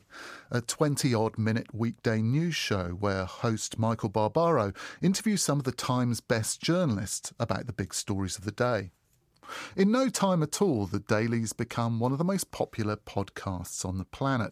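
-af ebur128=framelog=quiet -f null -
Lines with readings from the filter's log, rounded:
Integrated loudness:
  I:         -29.2 LUFS
  Threshold: -39.4 LUFS
Loudness range:
  LRA:         2.9 LU
  Threshold: -49.2 LUFS
  LRA low:   -30.9 LUFS
  LRA high:  -28.0 LUFS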